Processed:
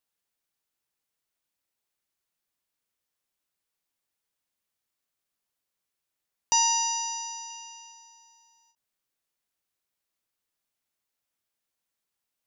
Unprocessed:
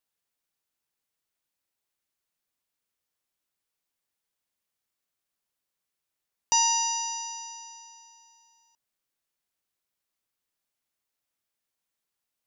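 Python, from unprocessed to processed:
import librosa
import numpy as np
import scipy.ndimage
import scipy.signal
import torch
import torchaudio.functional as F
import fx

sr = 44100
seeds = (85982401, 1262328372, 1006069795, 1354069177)

y = fx.peak_eq(x, sr, hz=3000.0, db=10.5, octaves=0.2, at=(7.5, 7.92))
y = fx.end_taper(y, sr, db_per_s=300.0)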